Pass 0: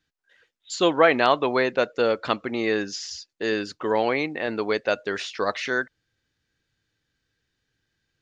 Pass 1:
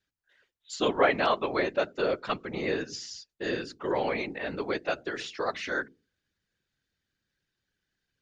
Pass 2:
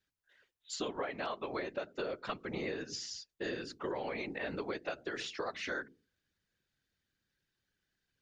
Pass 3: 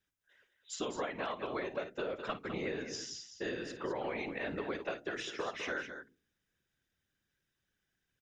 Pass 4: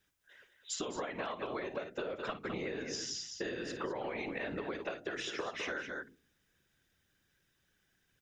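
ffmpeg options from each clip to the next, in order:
ffmpeg -i in.wav -af "bandreject=frequency=50:width_type=h:width=6,bandreject=frequency=100:width_type=h:width=6,bandreject=frequency=150:width_type=h:width=6,bandreject=frequency=200:width_type=h:width=6,bandreject=frequency=250:width_type=h:width=6,bandreject=frequency=300:width_type=h:width=6,bandreject=frequency=350:width_type=h:width=6,bandreject=frequency=400:width_type=h:width=6,afftfilt=real='hypot(re,im)*cos(2*PI*random(0))':imag='hypot(re,im)*sin(2*PI*random(1))':win_size=512:overlap=0.75" out.wav
ffmpeg -i in.wav -af "acompressor=threshold=-32dB:ratio=16,volume=-2dB" out.wav
ffmpeg -i in.wav -filter_complex "[0:a]bandreject=frequency=4400:width=5,asplit=2[link_01][link_02];[link_02]aecho=0:1:53|205:0.211|0.355[link_03];[link_01][link_03]amix=inputs=2:normalize=0" out.wav
ffmpeg -i in.wav -af "bandreject=frequency=53.28:width_type=h:width=4,bandreject=frequency=106.56:width_type=h:width=4,bandreject=frequency=159.84:width_type=h:width=4,bandreject=frequency=213.12:width_type=h:width=4,bandreject=frequency=266.4:width_type=h:width=4,acompressor=threshold=-44dB:ratio=6,volume=8dB" out.wav

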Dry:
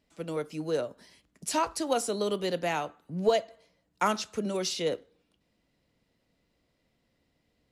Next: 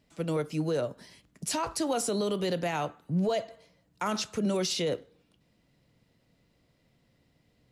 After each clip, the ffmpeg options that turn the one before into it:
ffmpeg -i in.wav -af "equalizer=frequency=130:width_type=o:width=0.88:gain=7.5,alimiter=level_in=0.5dB:limit=-24dB:level=0:latency=1:release=39,volume=-0.5dB,volume=3.5dB" out.wav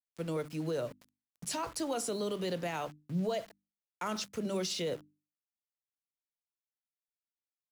ffmpeg -i in.wav -af "aeval=exprs='val(0)*gte(abs(val(0)),0.00708)':channel_layout=same,equalizer=frequency=770:width_type=o:width=0.26:gain=-2,bandreject=frequency=50:width_type=h:width=6,bandreject=frequency=100:width_type=h:width=6,bandreject=frequency=150:width_type=h:width=6,bandreject=frequency=200:width_type=h:width=6,bandreject=frequency=250:width_type=h:width=6,bandreject=frequency=300:width_type=h:width=6,volume=-5dB" out.wav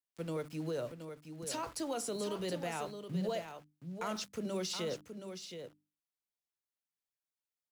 ffmpeg -i in.wav -af "aecho=1:1:722:0.376,volume=-3dB" out.wav

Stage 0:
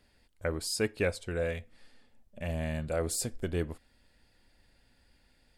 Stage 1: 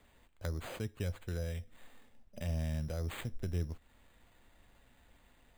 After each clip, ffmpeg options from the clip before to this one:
ffmpeg -i in.wav -filter_complex "[0:a]acrossover=split=160[link_01][link_02];[link_02]acompressor=threshold=-45dB:ratio=5[link_03];[link_01][link_03]amix=inputs=2:normalize=0,acrusher=samples=8:mix=1:aa=0.000001,volume=1.5dB" out.wav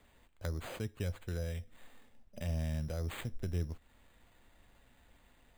ffmpeg -i in.wav -af anull out.wav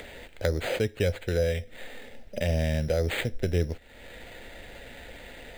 ffmpeg -i in.wav -filter_complex "[0:a]equalizer=frequency=500:width_type=o:width=1:gain=11,equalizer=frequency=2000:width_type=o:width=1:gain=8,equalizer=frequency=4000:width_type=o:width=1:gain=5,asplit=2[link_01][link_02];[link_02]acompressor=mode=upward:threshold=-36dB:ratio=2.5,volume=3dB[link_03];[link_01][link_03]amix=inputs=2:normalize=0,equalizer=frequency=1100:width_type=o:width=0.29:gain=-12.5" out.wav

